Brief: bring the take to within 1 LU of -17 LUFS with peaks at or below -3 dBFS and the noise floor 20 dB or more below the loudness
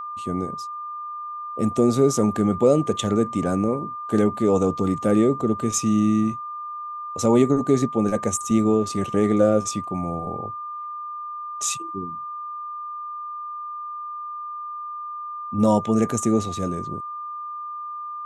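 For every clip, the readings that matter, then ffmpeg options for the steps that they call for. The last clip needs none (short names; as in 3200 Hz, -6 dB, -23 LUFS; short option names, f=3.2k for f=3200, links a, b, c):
steady tone 1200 Hz; tone level -30 dBFS; loudness -23.5 LUFS; peak -5.5 dBFS; loudness target -17.0 LUFS
-> -af "bandreject=f=1.2k:w=30"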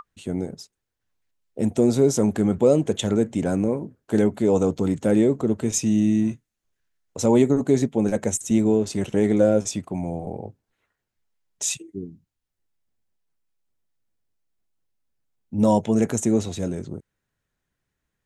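steady tone none; loudness -22.0 LUFS; peak -6.0 dBFS; loudness target -17.0 LUFS
-> -af "volume=5dB,alimiter=limit=-3dB:level=0:latency=1"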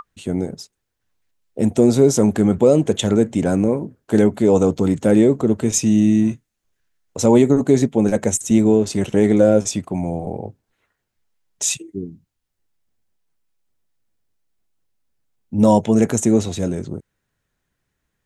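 loudness -17.0 LUFS; peak -3.0 dBFS; noise floor -77 dBFS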